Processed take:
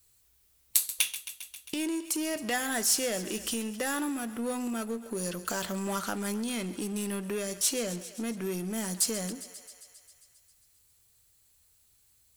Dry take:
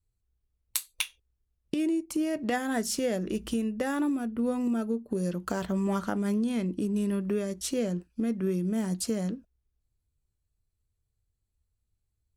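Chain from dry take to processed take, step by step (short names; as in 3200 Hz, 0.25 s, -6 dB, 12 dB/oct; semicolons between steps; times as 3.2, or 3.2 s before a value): tilt +3.5 dB/oct; thinning echo 0.134 s, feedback 65%, level -18 dB; power-law curve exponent 0.7; gain -8 dB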